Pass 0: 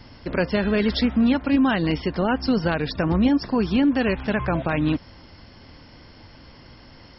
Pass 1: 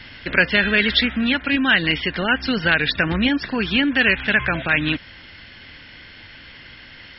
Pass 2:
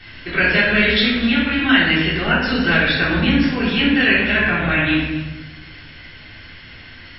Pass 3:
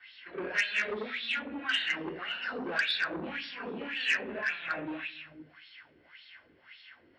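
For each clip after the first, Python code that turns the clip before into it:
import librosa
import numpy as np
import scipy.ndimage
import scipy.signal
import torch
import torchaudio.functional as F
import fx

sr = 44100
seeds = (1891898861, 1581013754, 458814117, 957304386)

y1 = fx.band_shelf(x, sr, hz=2400.0, db=15.5, octaves=1.7)
y1 = fx.rider(y1, sr, range_db=10, speed_s=2.0)
y1 = y1 * 10.0 ** (-2.5 / 20.0)
y2 = y1 + 10.0 ** (-17.0 / 20.0) * np.pad(y1, (int(260 * sr / 1000.0), 0))[:len(y1)]
y2 = fx.room_shoebox(y2, sr, seeds[0], volume_m3=490.0, walls='mixed', distance_m=3.5)
y2 = y2 * 10.0 ** (-6.5 / 20.0)
y3 = fx.filter_lfo_bandpass(y2, sr, shape='sine', hz=1.8, low_hz=360.0, high_hz=3900.0, q=3.2)
y3 = fx.transformer_sat(y3, sr, knee_hz=2500.0)
y3 = y3 * 10.0 ** (-6.5 / 20.0)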